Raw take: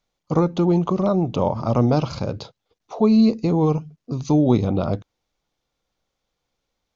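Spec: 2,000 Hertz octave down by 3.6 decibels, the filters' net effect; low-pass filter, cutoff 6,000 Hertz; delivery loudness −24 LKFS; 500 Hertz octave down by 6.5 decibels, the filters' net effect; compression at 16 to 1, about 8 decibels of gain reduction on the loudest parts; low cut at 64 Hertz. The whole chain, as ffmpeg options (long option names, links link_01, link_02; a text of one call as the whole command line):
ffmpeg -i in.wav -af "highpass=64,lowpass=6000,equalizer=frequency=500:width_type=o:gain=-8.5,equalizer=frequency=2000:width_type=o:gain=-4.5,acompressor=threshold=-21dB:ratio=16,volume=4dB" out.wav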